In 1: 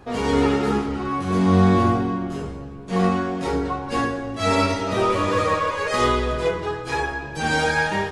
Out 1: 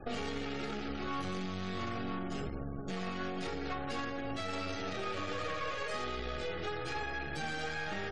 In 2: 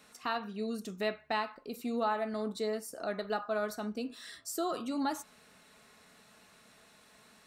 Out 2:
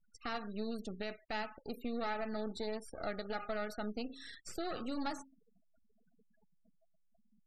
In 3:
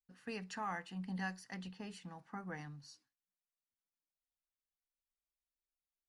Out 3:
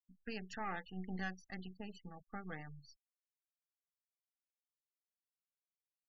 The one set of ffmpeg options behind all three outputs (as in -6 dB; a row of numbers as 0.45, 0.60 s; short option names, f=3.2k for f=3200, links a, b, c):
-filter_complex "[0:a]aeval=exprs='if(lt(val(0),0),0.251*val(0),val(0))':c=same,asuperstop=centerf=1000:order=12:qfactor=5.7,bandreject=f=134.4:t=h:w=4,bandreject=f=268.8:t=h:w=4,bandreject=f=403.2:t=h:w=4,bandreject=f=537.6:t=h:w=4,acrossover=split=2100|5100[a][b][c];[a]acompressor=threshold=-36dB:ratio=4[d];[b]acompressor=threshold=-44dB:ratio=4[e];[c]acompressor=threshold=-56dB:ratio=4[f];[d][e][f]amix=inputs=3:normalize=0,afftfilt=real='re*gte(hypot(re,im),0.00282)':imag='im*gte(hypot(re,im),0.00282)':win_size=1024:overlap=0.75,alimiter=level_in=6dB:limit=-24dB:level=0:latency=1:release=25,volume=-6dB,volume=2dB"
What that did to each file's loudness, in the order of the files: -16.5, -5.5, -1.5 LU